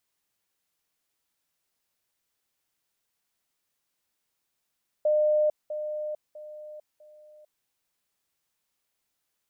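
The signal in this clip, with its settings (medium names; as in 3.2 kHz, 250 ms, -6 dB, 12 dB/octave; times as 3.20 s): level ladder 606 Hz -19.5 dBFS, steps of -10 dB, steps 4, 0.45 s 0.20 s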